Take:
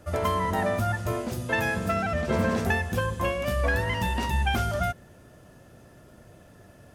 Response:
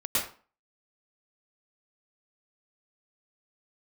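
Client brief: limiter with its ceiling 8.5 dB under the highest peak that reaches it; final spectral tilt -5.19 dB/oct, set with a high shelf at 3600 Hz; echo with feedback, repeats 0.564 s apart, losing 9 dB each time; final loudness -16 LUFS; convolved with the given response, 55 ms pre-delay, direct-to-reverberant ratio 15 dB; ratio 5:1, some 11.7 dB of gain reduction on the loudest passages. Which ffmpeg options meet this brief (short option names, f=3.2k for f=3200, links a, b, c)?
-filter_complex "[0:a]highshelf=f=3.6k:g=4,acompressor=threshold=-34dB:ratio=5,alimiter=level_in=7.5dB:limit=-24dB:level=0:latency=1,volume=-7.5dB,aecho=1:1:564|1128|1692|2256:0.355|0.124|0.0435|0.0152,asplit=2[a][b];[1:a]atrim=start_sample=2205,adelay=55[c];[b][c]afir=irnorm=-1:irlink=0,volume=-24.5dB[d];[a][d]amix=inputs=2:normalize=0,volume=24dB"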